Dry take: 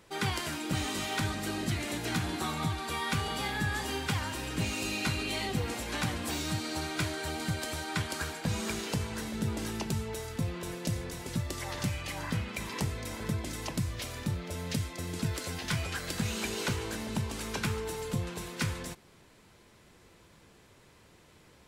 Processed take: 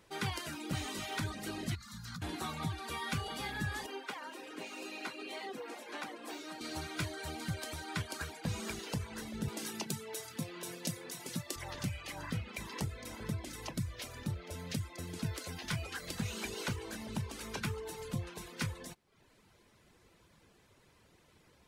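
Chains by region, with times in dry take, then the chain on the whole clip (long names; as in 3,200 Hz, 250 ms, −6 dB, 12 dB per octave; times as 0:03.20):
0:01.75–0:02.22: drawn EQ curve 220 Hz 0 dB, 320 Hz −29 dB, 650 Hz −26 dB, 1,200 Hz 0 dB, 2,600 Hz −16 dB, 4,300 Hz −1 dB, 6,900 Hz −4 dB, 9,900 Hz −9 dB, 15,000 Hz −4 dB + downward compressor 12 to 1, threshold −34 dBFS
0:03.86–0:06.61: high-pass filter 300 Hz 24 dB per octave + high-shelf EQ 2,900 Hz −9.5 dB
0:09.48–0:11.56: high-pass filter 140 Hz 24 dB per octave + high-shelf EQ 3,400 Hz +7.5 dB
whole clip: reverb reduction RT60 0.67 s; notch filter 7,500 Hz, Q 24; level −4.5 dB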